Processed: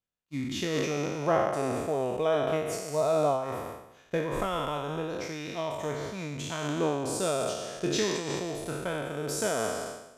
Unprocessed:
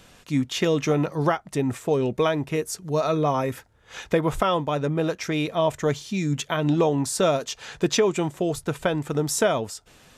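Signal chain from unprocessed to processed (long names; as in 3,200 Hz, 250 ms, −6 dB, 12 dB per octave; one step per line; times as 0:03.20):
peak hold with a decay on every bin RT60 2.14 s
downward expander −22 dBFS
0:01.22–0:03.44: parametric band 640 Hz +8.5 dB 0.59 octaves
amplitude modulation by smooth noise, depth 60%
level −9 dB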